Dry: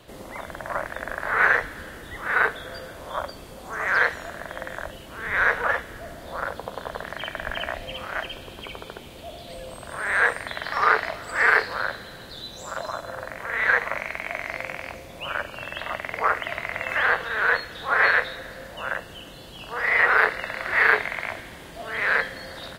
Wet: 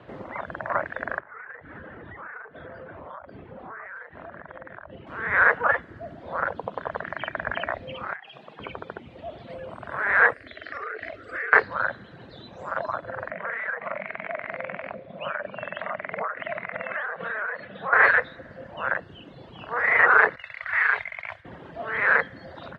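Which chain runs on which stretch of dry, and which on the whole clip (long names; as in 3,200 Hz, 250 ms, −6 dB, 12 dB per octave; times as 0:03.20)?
0:01.19–0:05.07: high-frequency loss of the air 290 metres + downward compressor 12 to 1, threshold −37 dBFS
0:08.13–0:08.60: low-shelf EQ 400 Hz −11.5 dB + downward compressor 16 to 1, threshold −34 dBFS + frequency shifter +110 Hz
0:10.34–0:11.53: downward compressor 8 to 1, threshold −24 dBFS + phaser with its sweep stopped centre 380 Hz, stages 4
0:13.30–0:17.93: downward compressor 10 to 1, threshold −27 dBFS + loudspeaker in its box 150–3,800 Hz, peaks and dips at 190 Hz +8 dB, 320 Hz −7 dB, 610 Hz +7 dB, 900 Hz −3 dB
0:20.36–0:21.45: downward expander −25 dBFS + guitar amp tone stack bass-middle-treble 10-0-10 + envelope flattener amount 50%
whole clip: reverb reduction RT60 1.1 s; Chebyshev band-pass filter 100–1,700 Hz, order 2; level +4 dB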